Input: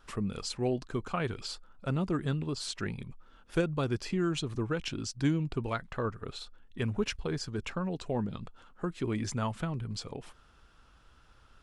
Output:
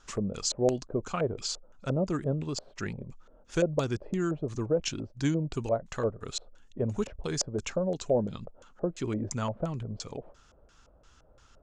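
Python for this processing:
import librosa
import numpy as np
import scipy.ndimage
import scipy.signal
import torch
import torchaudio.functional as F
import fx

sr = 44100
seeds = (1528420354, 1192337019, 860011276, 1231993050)

y = fx.high_shelf(x, sr, hz=5100.0, db=11.5, at=(5.53, 7.64))
y = fx.filter_lfo_lowpass(y, sr, shape='square', hz=2.9, low_hz=590.0, high_hz=6700.0, q=5.0)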